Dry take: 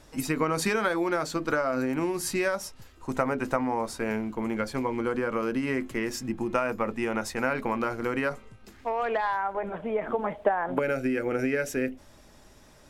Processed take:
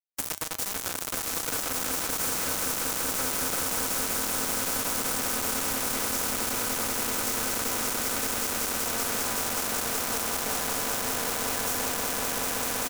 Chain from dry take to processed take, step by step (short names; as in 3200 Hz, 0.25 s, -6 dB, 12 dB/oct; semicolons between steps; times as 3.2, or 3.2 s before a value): spectral trails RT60 0.45 s; tilt shelf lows -6.5 dB; comb 4 ms, depth 100%; in parallel at -11.5 dB: sample-rate reducer 1600 Hz; on the sum: compressor 4:1, threshold -29 dBFS, peak gain reduction 11 dB; on a send: swelling echo 0.191 s, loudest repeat 8, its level -5 dB; on the sum: bit-crush 4-bit; band shelf 2900 Hz -9 dB; resonator 90 Hz, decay 0.2 s, harmonics odd, mix 50%; spectral compressor 2:1; gain +4 dB